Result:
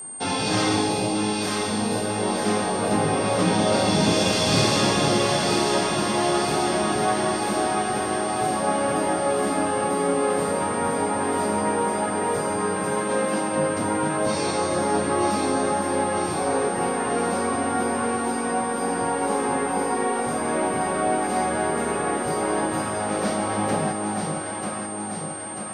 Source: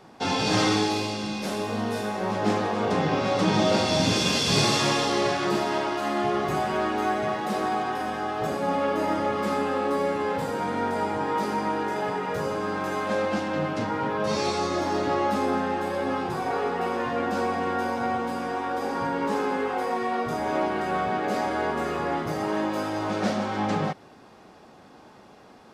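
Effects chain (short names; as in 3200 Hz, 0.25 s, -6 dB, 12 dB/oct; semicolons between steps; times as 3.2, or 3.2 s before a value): echo with dull and thin repeats by turns 0.47 s, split 900 Hz, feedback 77%, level -2 dB; whine 8700 Hz -34 dBFS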